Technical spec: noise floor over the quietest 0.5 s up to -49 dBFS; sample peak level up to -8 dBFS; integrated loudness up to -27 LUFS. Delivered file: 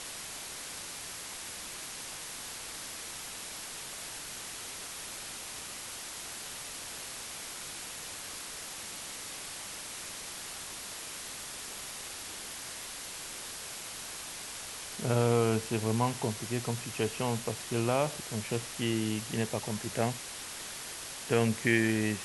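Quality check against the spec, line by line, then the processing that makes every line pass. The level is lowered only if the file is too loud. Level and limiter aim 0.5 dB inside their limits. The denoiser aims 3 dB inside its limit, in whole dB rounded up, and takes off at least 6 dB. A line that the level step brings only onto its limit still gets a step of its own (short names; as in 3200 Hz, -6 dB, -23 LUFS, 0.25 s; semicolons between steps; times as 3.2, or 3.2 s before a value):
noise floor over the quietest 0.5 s -42 dBFS: fail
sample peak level -12.5 dBFS: OK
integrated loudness -35.0 LUFS: OK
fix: denoiser 10 dB, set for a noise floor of -42 dBFS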